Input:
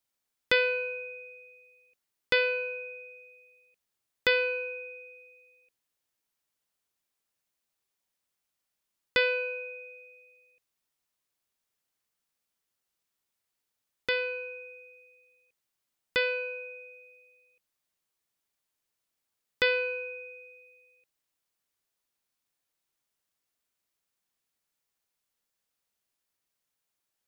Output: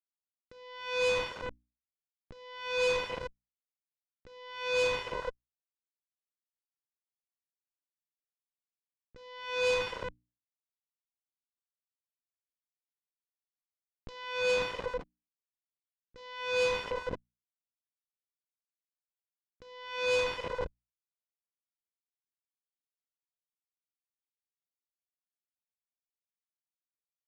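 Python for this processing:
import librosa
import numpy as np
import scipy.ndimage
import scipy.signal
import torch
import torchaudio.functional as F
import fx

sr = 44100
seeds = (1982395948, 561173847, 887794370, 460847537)

y = fx.delta_hold(x, sr, step_db=-45.5)
y = scipy.signal.sosfilt(scipy.signal.butter(2, 4800.0, 'lowpass', fs=sr, output='sos'), y)
y = fx.tilt_eq(y, sr, slope=-4.0)
y = fx.hum_notches(y, sr, base_hz=60, count=5)
y = fx.over_compress(y, sr, threshold_db=-40.0, ratio=-1.0)
y = fx.cheby_harmonics(y, sr, harmonics=(7, 8), levels_db=(-13, -20), full_scale_db=-25.5)
y = fx.low_shelf(y, sr, hz=65.0, db=-9.5)
y = F.gain(torch.from_numpy(y), 5.0).numpy()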